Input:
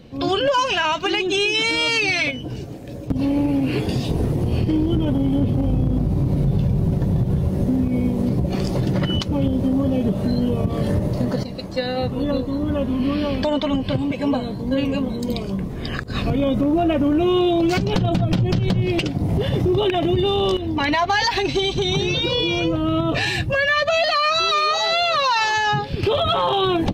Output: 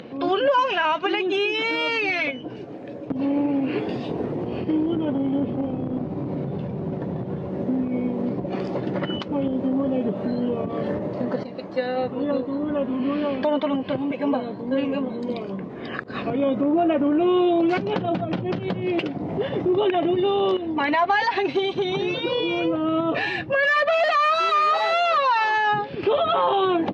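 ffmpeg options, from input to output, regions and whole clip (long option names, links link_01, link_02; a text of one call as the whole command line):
ffmpeg -i in.wav -filter_complex "[0:a]asettb=1/sr,asplit=3[link_01][link_02][link_03];[link_01]atrim=end=23.634[link_04];[link_02]atrim=start=23.63:end=25.18,asetpts=PTS-STARTPTS,afade=type=in:duration=0.004:curve=qsin,afade=type=out:start_time=1.546:duration=0.004:curve=qsin,equalizer=frequency=1600:width=0.47:gain=5,asoftclip=type=hard:threshold=-15.5dB[link_05];[link_03]atrim=start=25.176[link_06];[link_04][link_05]acrossfade=duration=0.004:curve1=hsin:curve2=qsin[link_07];[link_07][link_06]acrossfade=duration=0.004:curve1=qsin:curve2=hsin,lowpass=2200,acompressor=mode=upward:threshold=-26dB:ratio=2.5,highpass=270" out.wav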